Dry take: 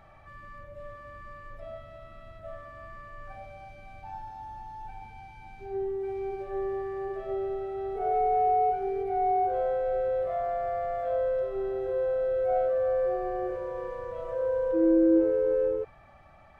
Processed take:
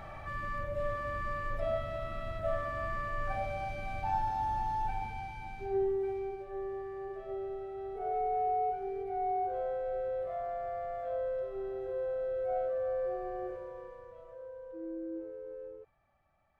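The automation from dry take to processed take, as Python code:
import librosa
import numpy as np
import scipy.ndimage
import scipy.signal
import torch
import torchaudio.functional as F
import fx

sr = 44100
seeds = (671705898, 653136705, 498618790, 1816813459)

y = fx.gain(x, sr, db=fx.line((4.73, 9.0), (6.01, 0.0), (6.43, -7.0), (13.46, -7.0), (14.54, -19.0)))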